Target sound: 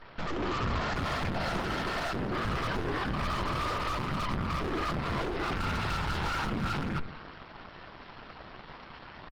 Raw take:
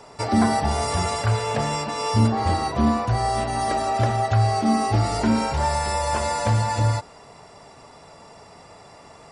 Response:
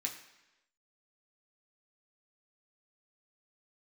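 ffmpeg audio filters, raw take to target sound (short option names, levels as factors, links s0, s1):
-filter_complex "[0:a]adynamicequalizer=threshold=0.0282:dfrequency=260:dqfactor=1.1:tfrequency=260:tqfactor=1.1:attack=5:release=100:ratio=0.375:range=1.5:mode=boostabove:tftype=bell,asetrate=68011,aresample=44100,atempo=0.64842,acompressor=threshold=0.0562:ratio=8,afftfilt=real='hypot(re,im)*cos(2*PI*random(0))':imag='hypot(re,im)*sin(2*PI*random(1))':win_size=512:overlap=0.75,asplit=2[s0][s1];[s1]adelay=166,lowpass=f=2200:p=1,volume=0.141,asplit=2[s2][s3];[s3]adelay=166,lowpass=f=2200:p=1,volume=0.25[s4];[s0][s2][s4]amix=inputs=3:normalize=0,aresample=11025,aeval=exprs='max(val(0),0)':c=same,aresample=44100,lowshelf=f=120:g=7.5,volume=35.5,asoftclip=hard,volume=0.0282,dynaudnorm=f=220:g=3:m=2,volume=2" -ar 48000 -c:a libopus -b:a 20k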